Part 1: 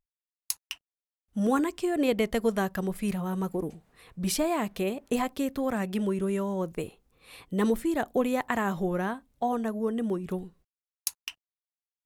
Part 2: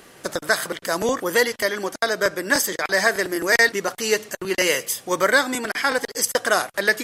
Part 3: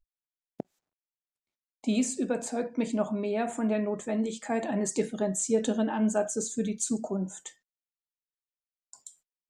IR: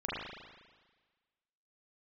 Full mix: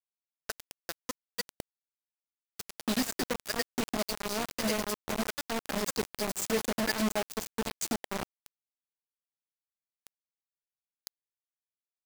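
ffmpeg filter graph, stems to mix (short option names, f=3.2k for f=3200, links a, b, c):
-filter_complex "[0:a]acompressor=threshold=-40dB:ratio=2.5,volume=-11.5dB,asplit=3[a][b][c];[b]volume=-10.5dB[d];[1:a]aeval=exprs='val(0)*pow(10,-28*(0.5-0.5*cos(2*PI*10*n/s))/20)':c=same,volume=-13.5dB[e];[2:a]adelay=1000,volume=-5.5dB[f];[c]apad=whole_len=310315[g];[e][g]sidechaincompress=threshold=-51dB:ratio=5:attack=16:release=101[h];[3:a]atrim=start_sample=2205[i];[d][i]afir=irnorm=-1:irlink=0[j];[a][h][f][j]amix=inputs=4:normalize=0,equalizer=f=4.7k:t=o:w=0.35:g=13,acrusher=bits=4:mix=0:aa=0.000001"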